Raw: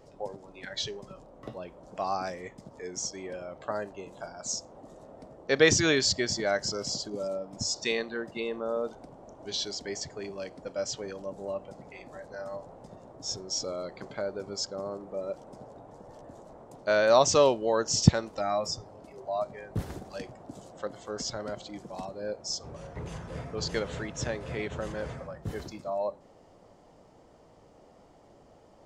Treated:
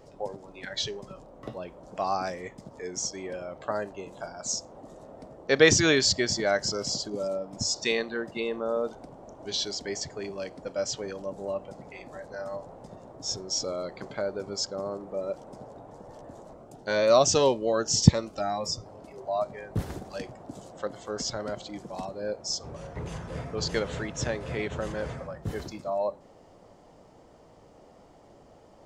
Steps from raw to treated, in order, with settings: 16.54–18.86 cascading phaser rising 1.8 Hz; gain +2.5 dB

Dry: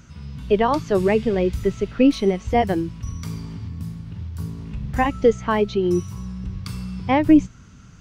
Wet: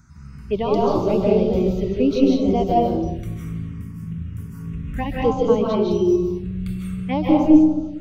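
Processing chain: digital reverb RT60 1.1 s, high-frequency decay 0.35×, pre-delay 0.115 s, DRR -4 dB; envelope phaser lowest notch 500 Hz, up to 1800 Hz, full sweep at -12.5 dBFS; gain -4 dB

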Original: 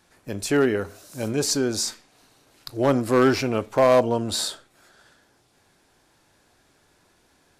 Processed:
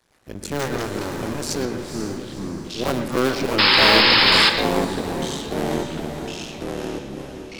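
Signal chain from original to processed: cycle switcher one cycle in 2, muted; echoes that change speed 84 ms, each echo -3 st, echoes 3; 1.65–2.7 air absorption 480 m; diffused feedback echo 0.494 s, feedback 46%, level -8 dB; 3.58–4.5 painted sound noise 770–5300 Hz -14 dBFS; on a send at -7.5 dB: reverb RT60 0.65 s, pre-delay 0.115 s; on the sum: gain -1.5 dB

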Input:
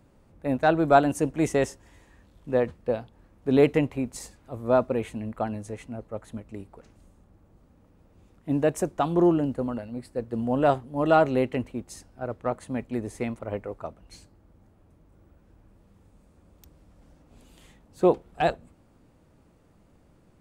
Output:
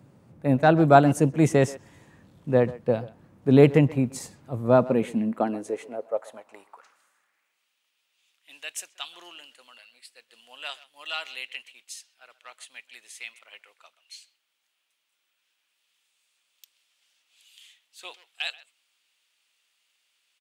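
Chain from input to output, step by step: speakerphone echo 0.13 s, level -18 dB; high-pass sweep 130 Hz -> 3000 Hz, 4.73–7.75; gain +2 dB

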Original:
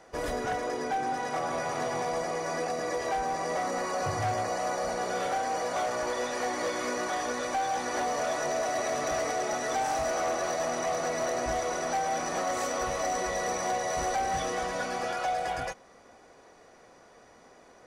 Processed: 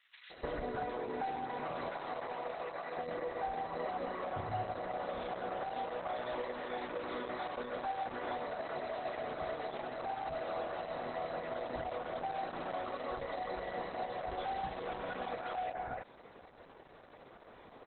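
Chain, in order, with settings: 1.6–2.66 HPF 340 Hz -> 920 Hz 6 dB/oct; high shelf 5900 Hz +11 dB; compressor 6:1, threshold -37 dBFS, peak gain reduction 10.5 dB; air absorption 61 m; bands offset in time highs, lows 0.3 s, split 2100 Hz; gain +3 dB; Opus 8 kbps 48000 Hz

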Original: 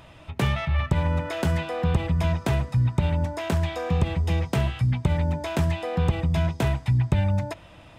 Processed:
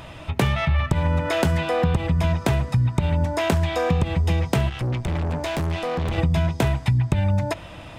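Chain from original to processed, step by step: 4.69–6.18 tube stage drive 31 dB, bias 0.65; compressor, threshold -26 dBFS, peak gain reduction 10.5 dB; gain +9 dB

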